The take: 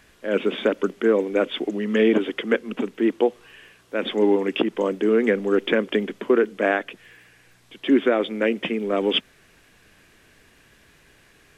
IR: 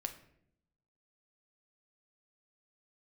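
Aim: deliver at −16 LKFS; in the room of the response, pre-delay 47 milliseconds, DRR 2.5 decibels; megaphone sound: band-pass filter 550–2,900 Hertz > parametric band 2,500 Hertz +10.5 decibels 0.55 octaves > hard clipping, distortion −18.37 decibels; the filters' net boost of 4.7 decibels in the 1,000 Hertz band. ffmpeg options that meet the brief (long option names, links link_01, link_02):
-filter_complex "[0:a]equalizer=frequency=1000:width_type=o:gain=7,asplit=2[link_01][link_02];[1:a]atrim=start_sample=2205,adelay=47[link_03];[link_02][link_03]afir=irnorm=-1:irlink=0,volume=-1.5dB[link_04];[link_01][link_04]amix=inputs=2:normalize=0,highpass=550,lowpass=2900,equalizer=frequency=2500:width_type=o:width=0.55:gain=10.5,asoftclip=type=hard:threshold=-12dB,volume=6.5dB"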